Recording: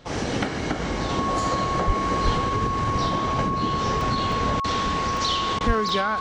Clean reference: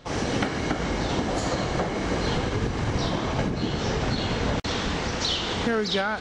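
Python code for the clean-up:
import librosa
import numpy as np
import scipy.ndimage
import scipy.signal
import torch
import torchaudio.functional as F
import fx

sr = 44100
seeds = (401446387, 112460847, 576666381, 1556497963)

y = fx.notch(x, sr, hz=1100.0, q=30.0)
y = fx.fix_deplosive(y, sr, at_s=(1.86, 2.24, 5.66))
y = fx.fix_interpolate(y, sr, at_s=(4.01, 4.32, 5.17, 5.89), length_ms=1.2)
y = fx.fix_interpolate(y, sr, at_s=(5.59,), length_ms=15.0)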